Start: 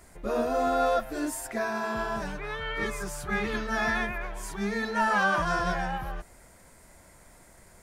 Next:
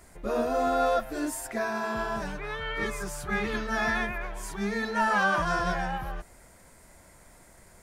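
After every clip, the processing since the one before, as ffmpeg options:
-af anull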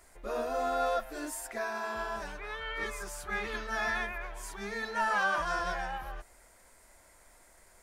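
-af "equalizer=f=140:w=0.7:g=-14,volume=-3.5dB"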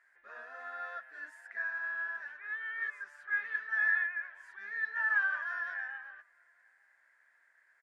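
-filter_complex "[0:a]bandpass=f=1.7k:t=q:w=11:csg=0,asplit=2[a][b];[b]adelay=874.6,volume=-30dB,highshelf=f=4k:g=-19.7[c];[a][c]amix=inputs=2:normalize=0,volume=7dB"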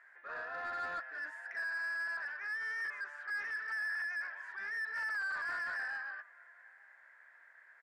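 -filter_complex "[0:a]alimiter=level_in=4.5dB:limit=-24dB:level=0:latency=1:release=138,volume=-4.5dB,asplit=2[a][b];[b]highpass=f=720:p=1,volume=18dB,asoftclip=type=tanh:threshold=-28.5dB[c];[a][c]amix=inputs=2:normalize=0,lowpass=f=1.2k:p=1,volume=-6dB"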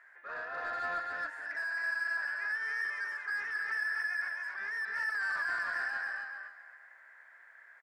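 -af "aecho=1:1:270|540|810:0.668|0.14|0.0295,volume=2dB"

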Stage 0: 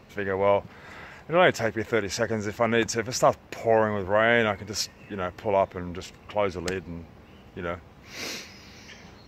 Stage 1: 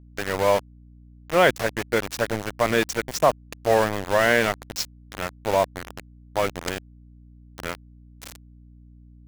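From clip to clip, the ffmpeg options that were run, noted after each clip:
-af "aeval=exprs='val(0)*gte(abs(val(0)),0.0531)':c=same,aeval=exprs='val(0)+0.00355*(sin(2*PI*60*n/s)+sin(2*PI*2*60*n/s)/2+sin(2*PI*3*60*n/s)/3+sin(2*PI*4*60*n/s)/4+sin(2*PI*5*60*n/s)/5)':c=same,volume=2dB"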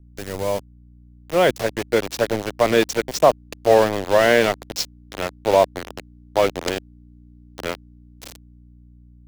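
-filter_complex "[0:a]equalizer=f=1.5k:w=0.51:g=-11,acrossover=split=320|4800[a][b][c];[b]dynaudnorm=f=430:g=7:m=12dB[d];[a][d][c]amix=inputs=3:normalize=0,volume=1dB"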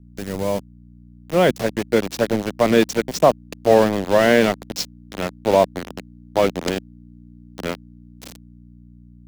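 -af "equalizer=f=200:t=o:w=1.2:g=9,volume=-1dB"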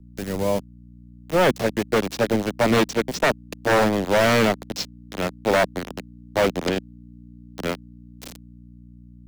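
-filter_complex "[0:a]acrossover=split=230|1700|5400[a][b][c][d];[d]alimiter=level_in=2dB:limit=-24dB:level=0:latency=1:release=170,volume=-2dB[e];[a][b][c][e]amix=inputs=4:normalize=0,aeval=exprs='0.282*(abs(mod(val(0)/0.282+3,4)-2)-1)':c=same"

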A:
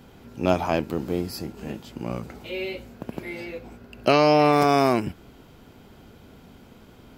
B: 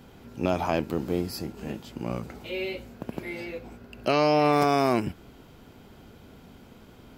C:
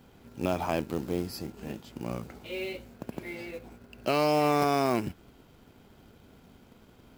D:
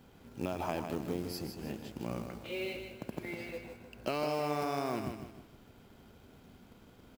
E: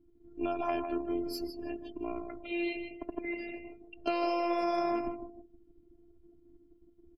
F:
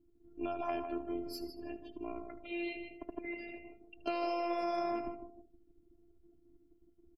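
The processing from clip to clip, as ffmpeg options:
-af "alimiter=limit=-10.5dB:level=0:latency=1:release=77,volume=-1dB"
-filter_complex "[0:a]asplit=2[a][b];[b]aeval=exprs='sgn(val(0))*max(abs(val(0))-0.00447,0)':c=same,volume=-7dB[c];[a][c]amix=inputs=2:normalize=0,acrusher=bits=5:mode=log:mix=0:aa=0.000001,volume=-6.5dB"
-filter_complex "[0:a]acompressor=threshold=-28dB:ratio=6,asplit=2[a][b];[b]aecho=0:1:155|310|465|620:0.447|0.165|0.0612|0.0226[c];[a][c]amix=inputs=2:normalize=0,volume=-2.5dB"
-af "afftdn=nr=34:nf=-49,afftfilt=real='hypot(re,im)*cos(PI*b)':imag='0':win_size=512:overlap=0.75,volume=6.5dB"
-af "aecho=1:1:77:0.15,volume=-4.5dB"

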